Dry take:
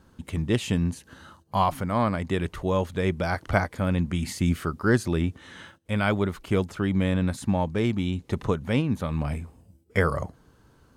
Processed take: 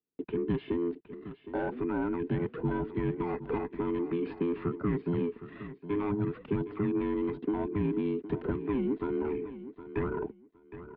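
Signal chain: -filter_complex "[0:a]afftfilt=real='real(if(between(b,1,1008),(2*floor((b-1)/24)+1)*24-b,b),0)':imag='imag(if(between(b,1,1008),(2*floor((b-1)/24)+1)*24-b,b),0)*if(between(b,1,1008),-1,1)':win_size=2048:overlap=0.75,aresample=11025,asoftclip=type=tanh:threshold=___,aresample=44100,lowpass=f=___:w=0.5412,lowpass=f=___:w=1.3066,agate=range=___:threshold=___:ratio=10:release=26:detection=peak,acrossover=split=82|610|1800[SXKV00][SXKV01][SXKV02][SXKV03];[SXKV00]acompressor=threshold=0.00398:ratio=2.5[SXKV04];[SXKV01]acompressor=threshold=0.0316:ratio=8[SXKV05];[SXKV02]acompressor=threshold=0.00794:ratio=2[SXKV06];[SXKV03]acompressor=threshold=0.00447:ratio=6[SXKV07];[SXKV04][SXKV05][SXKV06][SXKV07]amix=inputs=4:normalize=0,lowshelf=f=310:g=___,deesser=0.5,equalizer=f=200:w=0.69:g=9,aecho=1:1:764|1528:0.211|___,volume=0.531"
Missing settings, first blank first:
0.112, 2700, 2700, 0.01, 0.00316, 3, 0.0423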